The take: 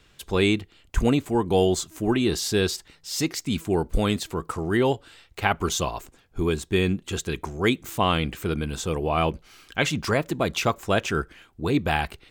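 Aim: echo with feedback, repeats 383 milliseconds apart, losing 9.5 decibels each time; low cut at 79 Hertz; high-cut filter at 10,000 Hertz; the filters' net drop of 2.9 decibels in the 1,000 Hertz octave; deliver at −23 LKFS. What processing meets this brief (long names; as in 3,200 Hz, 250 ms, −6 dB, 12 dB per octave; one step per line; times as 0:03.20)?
high-pass filter 79 Hz
low-pass filter 10,000 Hz
parametric band 1,000 Hz −4 dB
repeating echo 383 ms, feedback 33%, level −9.5 dB
level +3 dB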